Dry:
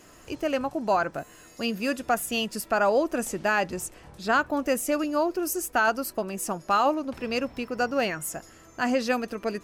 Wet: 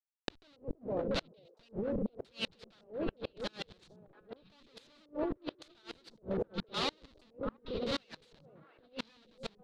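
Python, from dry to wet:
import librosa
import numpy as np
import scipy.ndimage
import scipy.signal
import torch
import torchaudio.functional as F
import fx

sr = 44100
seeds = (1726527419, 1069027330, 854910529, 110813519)

p1 = fx.spec_quant(x, sr, step_db=30)
p2 = fx.schmitt(p1, sr, flips_db=-36.0)
p3 = fx.filter_lfo_lowpass(p2, sr, shape='square', hz=0.89, low_hz=480.0, high_hz=4000.0, q=3.9)
p4 = p3 + fx.echo_stepped(p3, sr, ms=230, hz=170.0, octaves=1.4, feedback_pct=70, wet_db=-0.5, dry=0)
p5 = fx.over_compress(p4, sr, threshold_db=-34.0, ratio=-1.0)
p6 = fx.high_shelf(p5, sr, hz=3300.0, db=5.0)
p7 = fx.gate_flip(p6, sr, shuts_db=-24.0, range_db=-32)
y = p7 * 10.0 ** (1.5 / 20.0)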